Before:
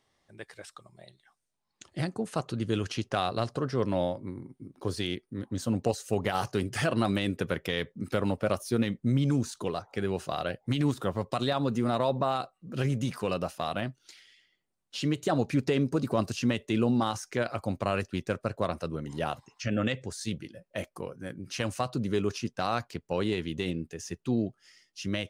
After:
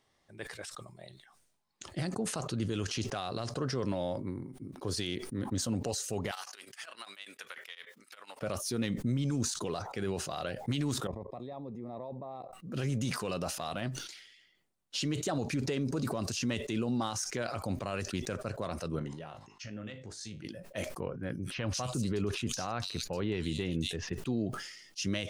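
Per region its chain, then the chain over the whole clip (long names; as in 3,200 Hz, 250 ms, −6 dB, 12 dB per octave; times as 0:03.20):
0:06.31–0:08.41: high-pass filter 1,400 Hz + downward compressor 5 to 1, threshold −40 dBFS + amplitude tremolo 10 Hz, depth 98%
0:11.07–0:12.53: output level in coarse steps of 18 dB + moving average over 30 samples + low-shelf EQ 360 Hz −8.5 dB
0:18.99–0:20.45: downward compressor 8 to 1, threshold −36 dBFS + high-frequency loss of the air 51 metres + tuned comb filter 52 Hz, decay 0.25 s, mix 70%
0:21.00–0:24.13: low-shelf EQ 85 Hz +9 dB + multiband delay without the direct sound lows, highs 230 ms, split 3,500 Hz
whole clip: dynamic equaliser 6,300 Hz, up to +6 dB, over −53 dBFS, Q 0.9; brickwall limiter −24 dBFS; level that may fall only so fast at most 59 dB per second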